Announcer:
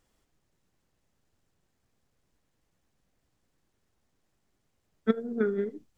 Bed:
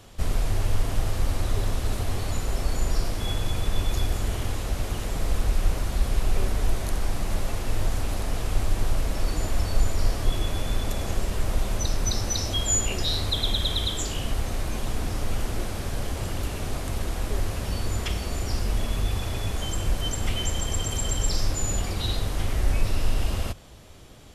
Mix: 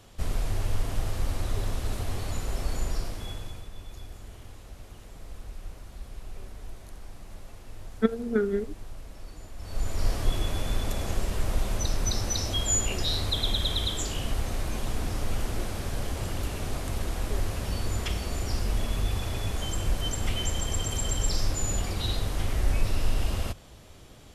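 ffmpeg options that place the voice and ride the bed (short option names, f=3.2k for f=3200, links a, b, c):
-filter_complex "[0:a]adelay=2950,volume=2dB[a];[1:a]volume=11.5dB,afade=t=out:st=2.77:d=0.92:silence=0.211349,afade=t=in:st=9.58:d=0.54:silence=0.16788[b];[a][b]amix=inputs=2:normalize=0"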